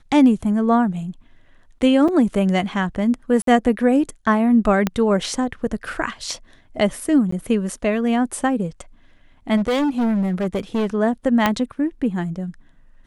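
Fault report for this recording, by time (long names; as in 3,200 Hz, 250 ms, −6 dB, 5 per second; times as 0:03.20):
0:02.08: drop-out 4.7 ms
0:03.42–0:03.47: drop-out 53 ms
0:04.87: click −6 dBFS
0:07.31–0:07.32: drop-out 14 ms
0:09.56–0:10.95: clipping −17 dBFS
0:11.46: click −3 dBFS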